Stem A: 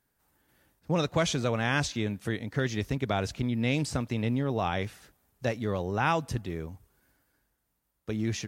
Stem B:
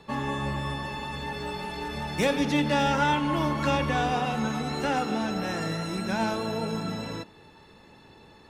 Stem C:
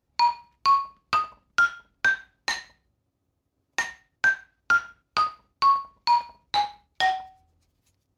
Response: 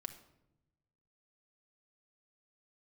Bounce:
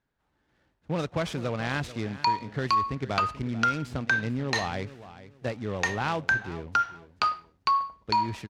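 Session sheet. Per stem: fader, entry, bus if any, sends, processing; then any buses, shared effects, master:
−2.0 dB, 0.00 s, no send, echo send −15.5 dB, low-pass filter 3,400 Hz 12 dB per octave; short delay modulated by noise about 1,800 Hz, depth 0.032 ms
muted
+0.5 dB, 2.05 s, no send, no echo send, high-shelf EQ 8,600 Hz −6.5 dB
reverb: not used
echo: repeating echo 438 ms, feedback 27%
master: downward compressor, threshold −21 dBFS, peak gain reduction 6.5 dB

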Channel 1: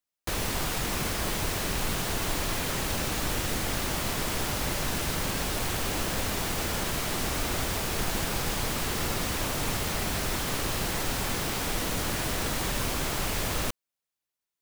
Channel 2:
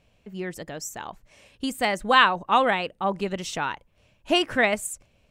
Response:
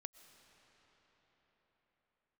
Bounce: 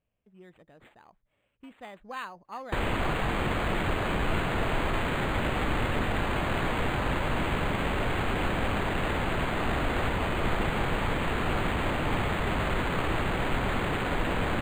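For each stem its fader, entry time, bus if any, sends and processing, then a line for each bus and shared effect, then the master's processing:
+2.5 dB, 2.45 s, no send, no processing
−19.0 dB, 0.00 s, no send, no processing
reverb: not used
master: linearly interpolated sample-rate reduction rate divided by 8×

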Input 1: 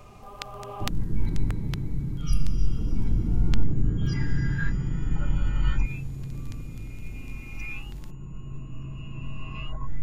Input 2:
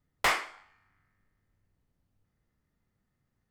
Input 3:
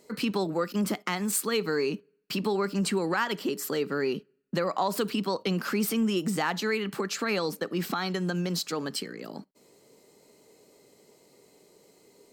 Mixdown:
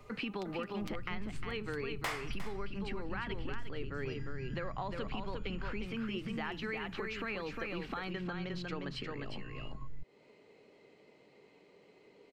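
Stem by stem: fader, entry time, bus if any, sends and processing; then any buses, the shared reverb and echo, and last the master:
−10.0 dB, 0.00 s, no send, no echo send, comb filter 7.4 ms, depth 39%
0.0 dB, 1.80 s, no send, echo send −11 dB, no processing
−4.0 dB, 0.00 s, no send, echo send −5 dB, low-pass with resonance 2,600 Hz, resonance Q 1.9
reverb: not used
echo: single-tap delay 355 ms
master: downward compressor 3 to 1, threshold −38 dBFS, peak gain reduction 14.5 dB

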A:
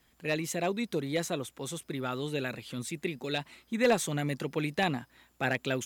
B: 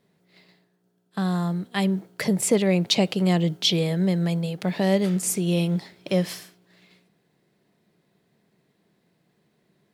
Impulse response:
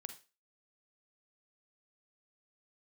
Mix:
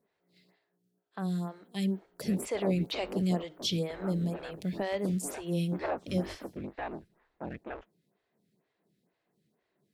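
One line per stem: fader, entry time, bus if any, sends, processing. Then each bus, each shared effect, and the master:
−5.5 dB, 2.00 s, send −20 dB, sub-harmonics by changed cycles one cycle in 3, inverted; low-pass filter 1,400 Hz 12 dB per octave
−8.5 dB, 0.00 s, send −7.5 dB, no processing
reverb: on, RT60 0.30 s, pre-delay 39 ms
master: phaser with staggered stages 2.1 Hz

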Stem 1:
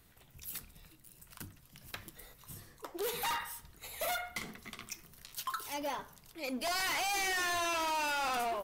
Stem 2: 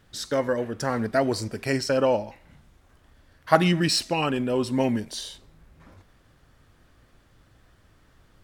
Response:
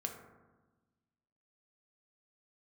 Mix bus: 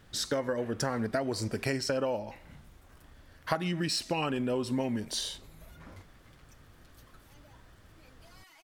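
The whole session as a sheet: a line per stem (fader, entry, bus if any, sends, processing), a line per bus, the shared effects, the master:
−18.5 dB, 1.60 s, no send, downward compressor 2.5 to 1, threshold −46 dBFS, peak gain reduction 8.5 dB; comb filter 6.3 ms, depth 84%
+1.5 dB, 0.00 s, no send, no processing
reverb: not used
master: downward compressor 12 to 1, threshold −27 dBFS, peak gain reduction 18 dB

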